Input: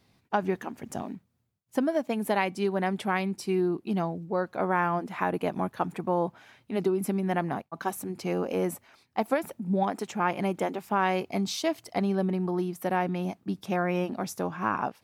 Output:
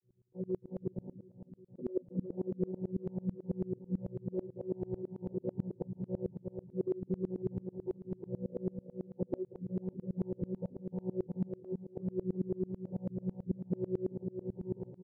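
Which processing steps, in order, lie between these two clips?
vocoder on a held chord bare fifth, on B2; inverse Chebyshev low-pass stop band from 1.4 kHz, stop band 60 dB; comb 2.2 ms, depth 94%; compression 6:1, threshold -31 dBFS, peak gain reduction 11 dB; feedback delay 361 ms, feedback 44%, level -6 dB; sawtooth tremolo in dB swelling 9.1 Hz, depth 30 dB; trim +6 dB

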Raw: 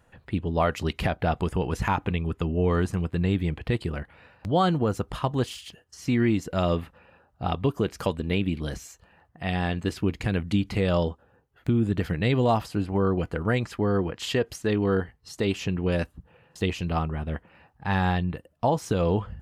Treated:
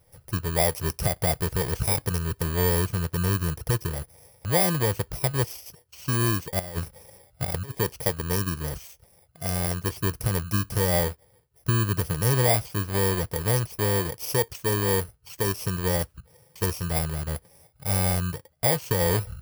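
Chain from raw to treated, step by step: bit-reversed sample order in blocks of 32 samples; graphic EQ 125/250/500 Hz +5/-11/+5 dB; 6.59–7.75 s: compressor with a negative ratio -29 dBFS, ratio -0.5

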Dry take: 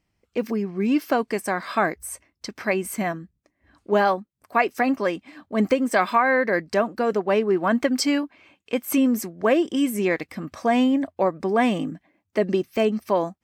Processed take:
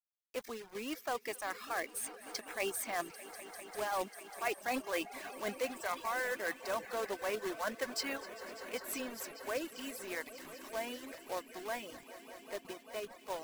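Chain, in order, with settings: Doppler pass-by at 4.17 s, 14 m/s, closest 13 m; high-pass 560 Hz 12 dB/octave; reverse; compression 20:1, threshold -35 dBFS, peak gain reduction 21 dB; reverse; companded quantiser 4-bit; echo with a slow build-up 198 ms, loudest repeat 5, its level -17 dB; reverb removal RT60 0.62 s; on a send: feedback echo behind a high-pass 250 ms, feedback 58%, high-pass 1.8 kHz, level -18 dB; on the sum: trim +2.5 dB

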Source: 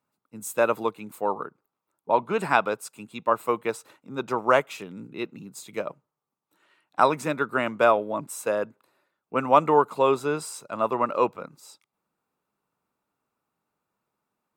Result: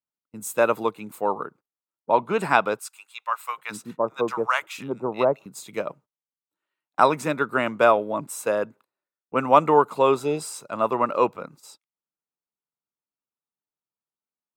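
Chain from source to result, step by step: gate -50 dBFS, range -23 dB; 2.79–5.46 s: bands offset in time highs, lows 720 ms, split 940 Hz; 10.26–10.54 s: spectral replace 900–1800 Hz; trim +2 dB

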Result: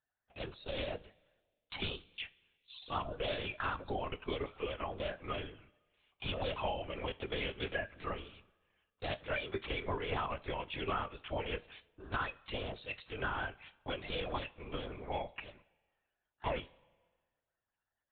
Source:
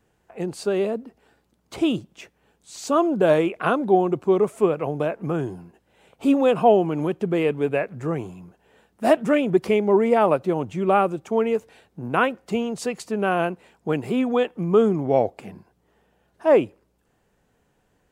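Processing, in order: coarse spectral quantiser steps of 30 dB; high-pass 230 Hz 12 dB/octave; band-stop 760 Hz, Q 12; gate -47 dBFS, range -17 dB; differentiator; compression 6:1, threshold -45 dBFS, peak gain reduction 13 dB; 14.37–15.13 s: AM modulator 280 Hz, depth 70%; LPC vocoder at 8 kHz whisper; two-slope reverb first 0.24 s, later 1.5 s, from -18 dB, DRR 13 dB; 11.40–12.00 s: tape noise reduction on one side only decoder only; trim +11.5 dB

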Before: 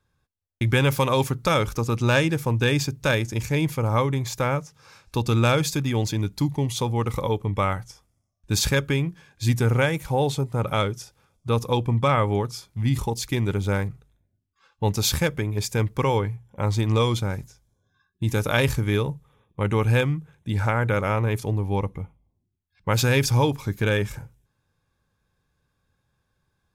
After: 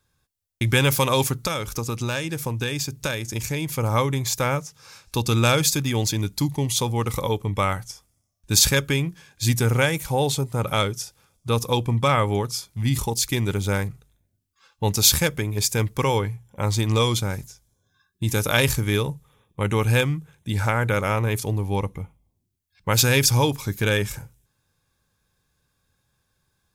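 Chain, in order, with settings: treble shelf 3.6 kHz +11 dB; 1.38–3.74 s: compression, threshold -23 dBFS, peak gain reduction 9.5 dB

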